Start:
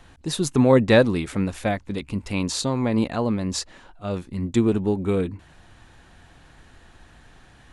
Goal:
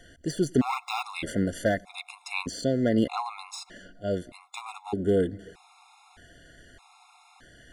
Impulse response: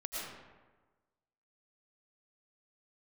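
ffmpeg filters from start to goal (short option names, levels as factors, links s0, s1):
-filter_complex "[0:a]deesser=0.75,bass=f=250:g=-7,treble=f=4000:g=2,asoftclip=type=hard:threshold=0.158,asplit=2[s0][s1];[s1]asuperstop=centerf=2600:order=8:qfactor=3.9[s2];[1:a]atrim=start_sample=2205,adelay=95[s3];[s2][s3]afir=irnorm=-1:irlink=0,volume=0.0562[s4];[s0][s4]amix=inputs=2:normalize=0,afftfilt=real='re*gt(sin(2*PI*0.81*pts/sr)*(1-2*mod(floor(b*sr/1024/700),2)),0)':imag='im*gt(sin(2*PI*0.81*pts/sr)*(1-2*mod(floor(b*sr/1024/700),2)),0)':win_size=1024:overlap=0.75,volume=1.26"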